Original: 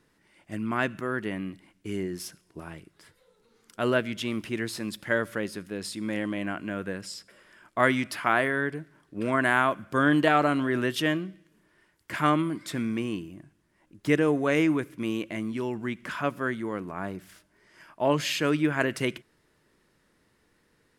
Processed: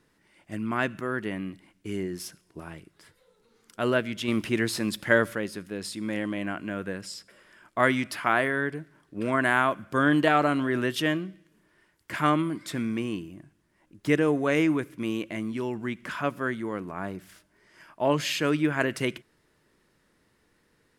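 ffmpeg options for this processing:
ffmpeg -i in.wav -filter_complex "[0:a]asplit=3[link_01][link_02][link_03];[link_01]atrim=end=4.282[link_04];[link_02]atrim=start=4.278:end=5.332,asetpts=PTS-STARTPTS,volume=5dB[link_05];[link_03]atrim=start=5.328[link_06];[link_04][link_05]acrossfade=duration=0.004:curve1=hsin:curve2=hsin[link_07];[link_07][link_06]acrossfade=duration=0.004:curve1=hsin:curve2=hsin" out.wav

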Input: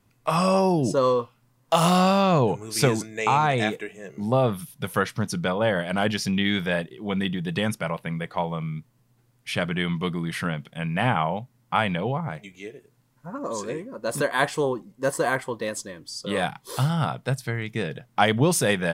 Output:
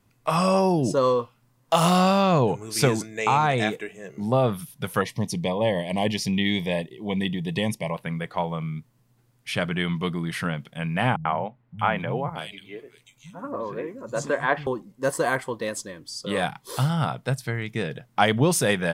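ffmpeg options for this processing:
ffmpeg -i in.wav -filter_complex "[0:a]asettb=1/sr,asplit=3[link_01][link_02][link_03];[link_01]atrim=end=5.014[link_04];[link_02]atrim=start=5.01:end=7.95,asetpts=PTS-STARTPTS,afade=type=in:duration=0.004:curve=qsin,afade=type=out:start_time=2.936:duration=0.004:curve=qsin,asuperstop=centerf=1400:order=8:qfactor=2[link_05];[link_03]atrim=start=7.946[link_06];[link_04][link_05]acrossfade=duration=0.004:curve1=hsin:curve2=qsin[link_07];[link_07][link_06]acrossfade=duration=0.004:curve1=qsin:curve2=hsin,asettb=1/sr,asplit=3[link_08][link_09][link_10];[link_08]atrim=end=11.164[link_11];[link_09]atrim=start=11.16:end=14.67,asetpts=PTS-STARTPTS,afade=type=in:duration=0.004:curve=qsin,afade=type=out:start_time=3.506:duration=0.004:curve=qsin,acrossover=split=180|3000[link_12][link_13][link_14];[link_13]adelay=90[link_15];[link_14]adelay=630[link_16];[link_12][link_15][link_16]amix=inputs=3:normalize=0,atrim=end_sample=154791[link_17];[link_10]atrim=start=14.666[link_18];[link_11][link_17]acrossfade=duration=0.004:curve1=hsin:curve2=qsin[link_19];[link_19][link_18]acrossfade=duration=0.004:curve1=qsin:curve2=hsin" out.wav

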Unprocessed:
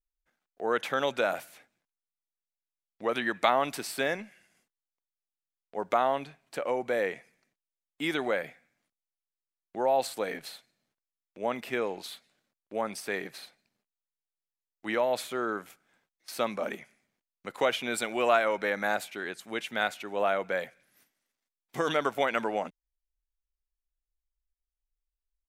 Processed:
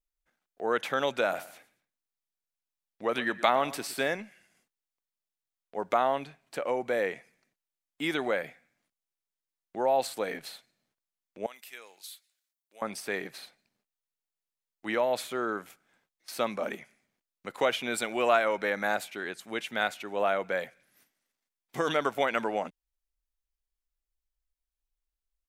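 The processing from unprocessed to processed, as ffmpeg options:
ffmpeg -i in.wav -filter_complex "[0:a]asettb=1/sr,asplit=3[link_01][link_02][link_03];[link_01]atrim=end=1.244[link_04];[link_02]atrim=start=1.24:end=4.09,asetpts=PTS-STARTPTS,afade=type=in:duration=0.004:curve=qsin,afade=type=out:start_time=2.846:duration=0.004:curve=qsin,aecho=1:1:116|232:0.141|0.0367,atrim=end_sample=125685[link_05];[link_03]atrim=start=4.086[link_06];[link_04][link_05]acrossfade=duration=0.004:curve1=hsin:curve2=qsin[link_07];[link_07][link_06]acrossfade=duration=0.004:curve1=qsin:curve2=hsin,asettb=1/sr,asplit=3[link_08][link_09][link_10];[link_08]atrim=end=11.464[link_11];[link_09]atrim=start=11.46:end=12.82,asetpts=PTS-STARTPTS,afade=type=in:duration=0.004:curve=qsin,afade=type=out:start_time=1.356:duration=0.004:curve=qsin,aderivative[link_12];[link_10]atrim=start=12.816[link_13];[link_11][link_12]acrossfade=duration=0.004:curve1=hsin:curve2=qsin[link_14];[link_14][link_13]acrossfade=duration=0.004:curve1=qsin:curve2=hsin" out.wav

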